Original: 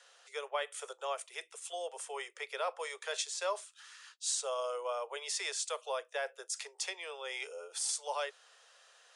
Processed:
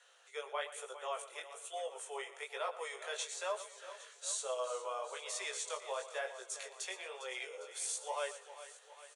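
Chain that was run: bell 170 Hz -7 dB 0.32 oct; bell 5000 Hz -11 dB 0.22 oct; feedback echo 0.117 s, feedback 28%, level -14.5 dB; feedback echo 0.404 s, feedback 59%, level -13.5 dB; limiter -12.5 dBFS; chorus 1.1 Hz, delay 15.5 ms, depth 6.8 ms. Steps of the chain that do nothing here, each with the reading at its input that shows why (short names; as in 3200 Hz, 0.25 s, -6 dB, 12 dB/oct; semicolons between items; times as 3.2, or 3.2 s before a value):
bell 170 Hz: input band starts at 340 Hz; limiter -12.5 dBFS: input peak -22.0 dBFS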